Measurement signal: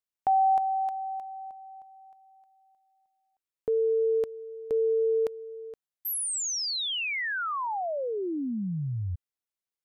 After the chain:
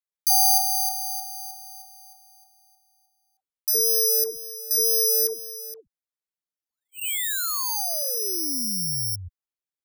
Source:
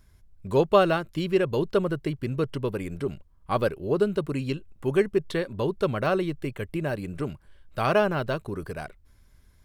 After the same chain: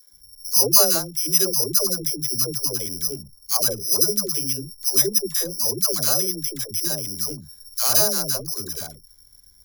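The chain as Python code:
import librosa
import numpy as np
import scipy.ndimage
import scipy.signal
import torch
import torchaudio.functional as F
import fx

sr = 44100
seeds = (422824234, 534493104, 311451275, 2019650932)

y = (np.kron(scipy.signal.resample_poly(x, 1, 8), np.eye(8)[0]) * 8)[:len(x)]
y = fx.dispersion(y, sr, late='lows', ms=133.0, hz=460.0)
y = F.gain(torch.from_numpy(y), -5.0).numpy()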